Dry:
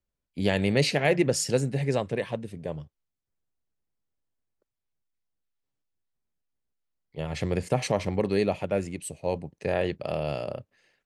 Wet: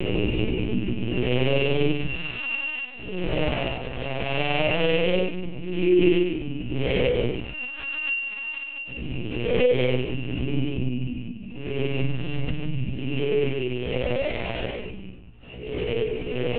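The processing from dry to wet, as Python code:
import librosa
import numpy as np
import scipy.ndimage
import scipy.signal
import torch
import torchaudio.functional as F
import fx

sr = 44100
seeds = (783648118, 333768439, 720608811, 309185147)

y = np.r_[np.sort(x[:len(x) // 16 * 16].reshape(-1, 16), axis=1).ravel(), x[len(x) // 16 * 16:]]
y = fx.recorder_agc(y, sr, target_db=-14.0, rise_db_per_s=8.4, max_gain_db=30)
y = fx.paulstretch(y, sr, seeds[0], factor=7.1, window_s=0.05, from_s=0.64)
y = fx.lowpass_res(y, sr, hz=2900.0, q=1.5)
y = fx.peak_eq(y, sr, hz=1800.0, db=-7.0, octaves=2.3)
y = fx.doubler(y, sr, ms=37.0, db=-4.0)
y = fx.lpc_vocoder(y, sr, seeds[1], excitation='pitch_kept', order=8)
y = fx.stretch_grains(y, sr, factor=1.5, grain_ms=98.0)
y = fx.pre_swell(y, sr, db_per_s=58.0)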